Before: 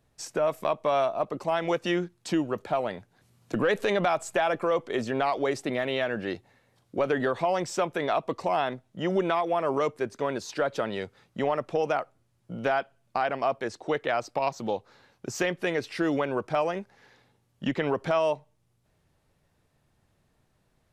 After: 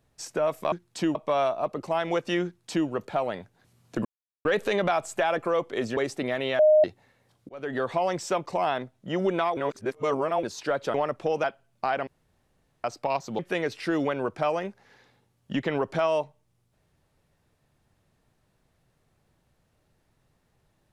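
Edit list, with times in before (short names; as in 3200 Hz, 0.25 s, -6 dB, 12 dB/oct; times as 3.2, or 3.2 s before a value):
2.02–2.45 copy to 0.72
3.62 insert silence 0.40 s
5.14–5.44 cut
6.06–6.31 bleep 615 Hz -14 dBFS
6.96–7.34 fade in
7.93–8.37 cut
9.48–10.34 reverse
10.85–11.43 cut
11.93–12.76 cut
13.39–14.16 room tone
14.71–15.51 cut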